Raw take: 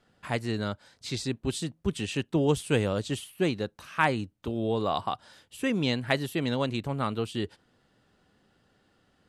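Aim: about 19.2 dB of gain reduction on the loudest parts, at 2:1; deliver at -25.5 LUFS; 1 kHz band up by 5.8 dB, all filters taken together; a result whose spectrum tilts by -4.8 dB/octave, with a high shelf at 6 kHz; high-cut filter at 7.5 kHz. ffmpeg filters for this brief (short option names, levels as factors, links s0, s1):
-af "lowpass=7500,equalizer=f=1000:t=o:g=7,highshelf=f=6000:g=8.5,acompressor=threshold=0.00282:ratio=2,volume=7.94"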